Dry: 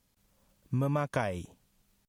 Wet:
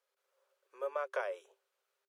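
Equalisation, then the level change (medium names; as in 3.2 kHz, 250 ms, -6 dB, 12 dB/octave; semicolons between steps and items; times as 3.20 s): rippled Chebyshev high-pass 380 Hz, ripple 9 dB; peaking EQ 1.8 kHz -4.5 dB 0.58 oct; treble shelf 5 kHz -8.5 dB; +1.0 dB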